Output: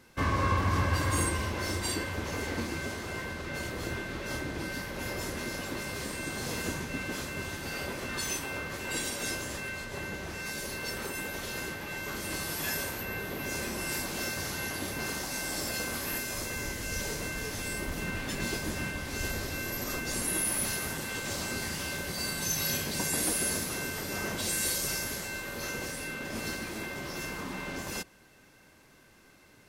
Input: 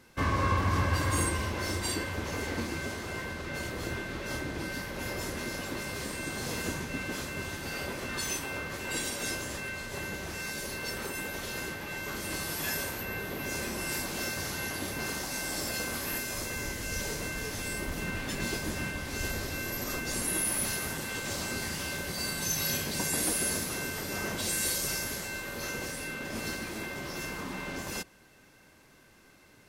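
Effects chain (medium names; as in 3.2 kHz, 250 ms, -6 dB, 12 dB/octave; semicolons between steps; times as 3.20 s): 9.84–10.46 s: treble shelf 4.9 kHz -5.5 dB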